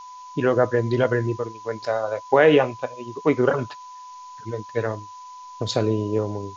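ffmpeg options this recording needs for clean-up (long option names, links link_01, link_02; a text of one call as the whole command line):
ffmpeg -i in.wav -af "bandreject=frequency=1000:width=30,afftdn=noise_reduction=25:noise_floor=-41" out.wav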